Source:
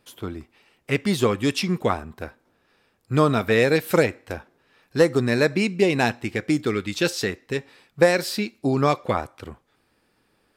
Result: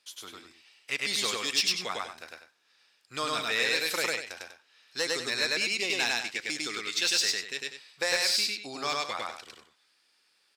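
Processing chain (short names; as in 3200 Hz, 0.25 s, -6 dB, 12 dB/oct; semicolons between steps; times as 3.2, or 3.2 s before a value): band-pass 5200 Hz, Q 1.1; loudspeakers at several distances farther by 35 m -1 dB, 67 m -11 dB; in parallel at -4 dB: hard clip -28 dBFS, distortion -10 dB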